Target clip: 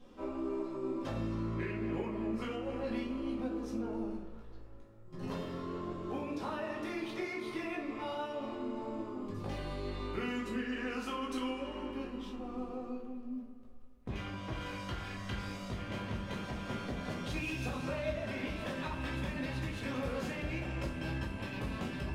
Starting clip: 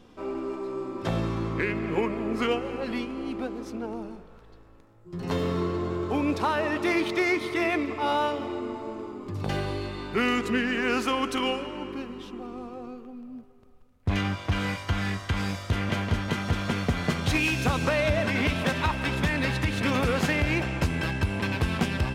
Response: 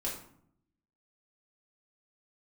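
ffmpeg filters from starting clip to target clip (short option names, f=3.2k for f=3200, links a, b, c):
-filter_complex "[0:a]acompressor=threshold=-31dB:ratio=6[a];[1:a]atrim=start_sample=2205,asetrate=48510,aresample=44100[b];[a][b]afir=irnorm=-1:irlink=0,volume=-7dB"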